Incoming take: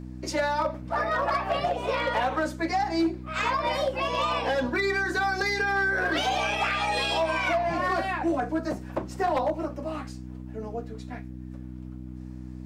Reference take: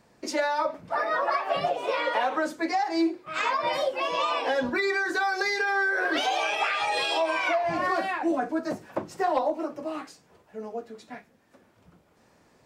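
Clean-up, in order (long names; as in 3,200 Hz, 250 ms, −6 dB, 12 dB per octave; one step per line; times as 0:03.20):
clipped peaks rebuilt −19 dBFS
hum removal 62.7 Hz, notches 5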